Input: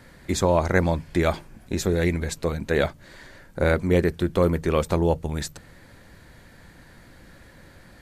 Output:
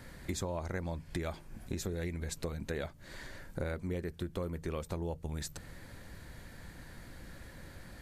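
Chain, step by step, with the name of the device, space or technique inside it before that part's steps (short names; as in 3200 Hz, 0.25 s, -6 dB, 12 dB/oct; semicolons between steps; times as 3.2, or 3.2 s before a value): ASMR close-microphone chain (low shelf 110 Hz +5.5 dB; compressor 6:1, threshold -32 dBFS, peak gain reduction 17 dB; high shelf 6100 Hz +4.5 dB); gain -3 dB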